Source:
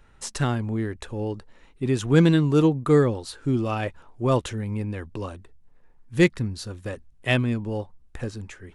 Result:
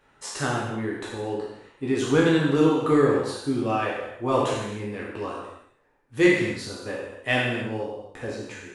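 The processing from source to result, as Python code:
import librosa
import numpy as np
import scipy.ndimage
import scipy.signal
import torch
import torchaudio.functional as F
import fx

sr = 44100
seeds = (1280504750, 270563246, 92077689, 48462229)

p1 = fx.spec_trails(x, sr, decay_s=0.53)
p2 = fx.highpass(p1, sr, hz=420.0, slope=6)
p3 = fx.high_shelf(p2, sr, hz=2700.0, db=-7.0)
p4 = 10.0 ** (-17.0 / 20.0) * np.tanh(p3 / 10.0 ** (-17.0 / 20.0))
p5 = p3 + (p4 * librosa.db_to_amplitude(-10.0))
p6 = fx.rev_gated(p5, sr, seeds[0], gate_ms=320, shape='falling', drr_db=-2.0)
y = p6 * librosa.db_to_amplitude(-2.5)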